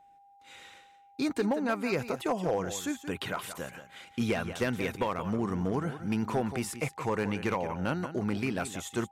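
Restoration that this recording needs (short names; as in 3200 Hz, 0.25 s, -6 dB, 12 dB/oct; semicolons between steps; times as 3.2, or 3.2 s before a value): clip repair -21 dBFS; notch 800 Hz, Q 30; interpolate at 4.84, 2.8 ms; inverse comb 0.176 s -12 dB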